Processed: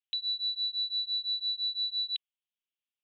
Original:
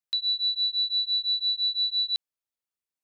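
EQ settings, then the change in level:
high-pass with resonance 3,000 Hz, resonance Q 3.9
Chebyshev low-pass filter 3,900 Hz, order 8
high-frequency loss of the air 380 metres
+2.0 dB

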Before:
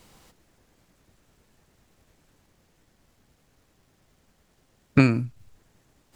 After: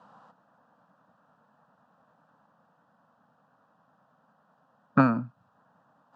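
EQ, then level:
high-pass filter 180 Hz 24 dB per octave
low-pass with resonance 1,500 Hz, resonance Q 1.7
phaser with its sweep stopped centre 890 Hz, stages 4
+5.0 dB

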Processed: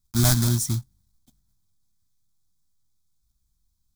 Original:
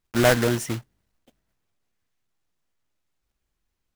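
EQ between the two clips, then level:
bass and treble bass +12 dB, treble +3 dB
high shelf with overshoot 2,400 Hz +8.5 dB, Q 3
phaser with its sweep stopped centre 1,200 Hz, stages 4
−4.0 dB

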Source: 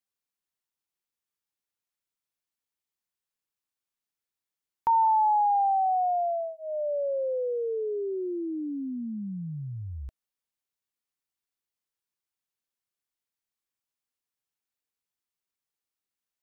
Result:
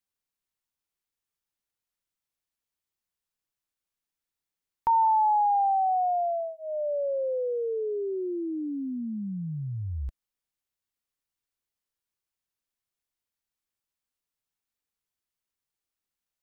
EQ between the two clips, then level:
low-shelf EQ 82 Hz +9.5 dB
0.0 dB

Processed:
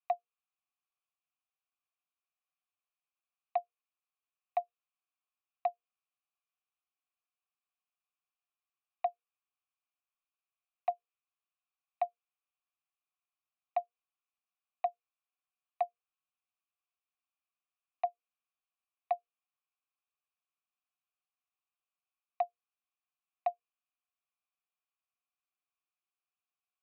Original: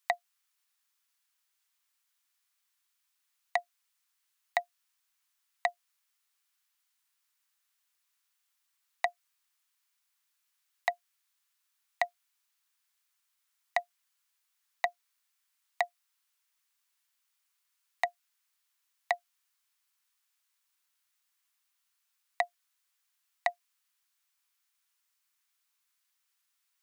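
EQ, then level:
formant filter a
Butterworth low-pass 3,900 Hz
mains-hum notches 60/120/180/240/300/360/420/480 Hz
+1.0 dB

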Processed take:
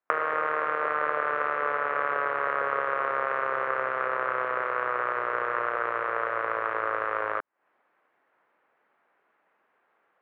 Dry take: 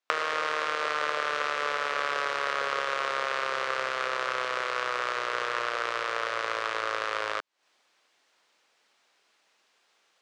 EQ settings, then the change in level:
low-pass filter 1,800 Hz 24 dB per octave
+3.0 dB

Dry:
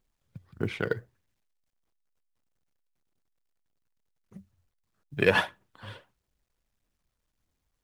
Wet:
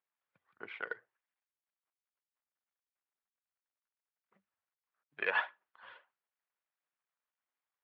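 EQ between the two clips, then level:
high-pass filter 1,100 Hz 12 dB per octave
high-frequency loss of the air 430 metres
high-shelf EQ 4,300 Hz −10 dB
0.0 dB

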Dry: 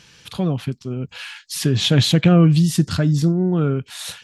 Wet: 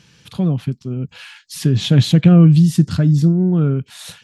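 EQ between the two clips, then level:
parametric band 160 Hz +8.5 dB 2.1 octaves
−4.0 dB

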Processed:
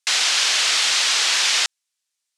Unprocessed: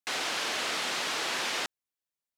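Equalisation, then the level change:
meter weighting curve ITU-R 468
+5.0 dB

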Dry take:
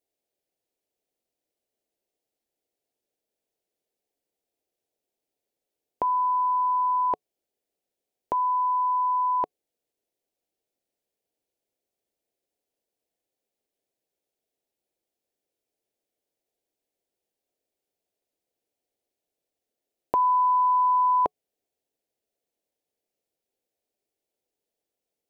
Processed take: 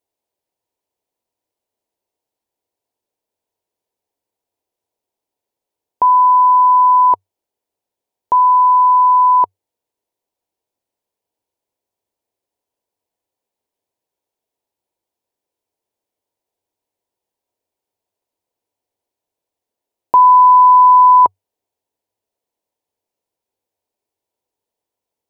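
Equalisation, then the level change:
parametric band 96 Hz +10.5 dB 0.32 octaves
parametric band 960 Hz +14.5 dB 0.34 octaves
+1.5 dB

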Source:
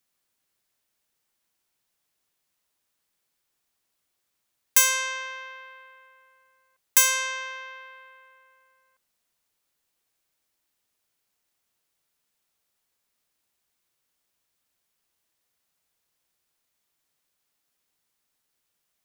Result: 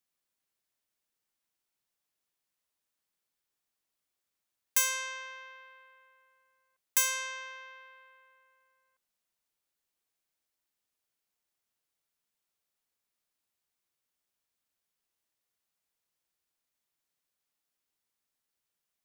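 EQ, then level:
mains-hum notches 50/100/150 Hz
−8.5 dB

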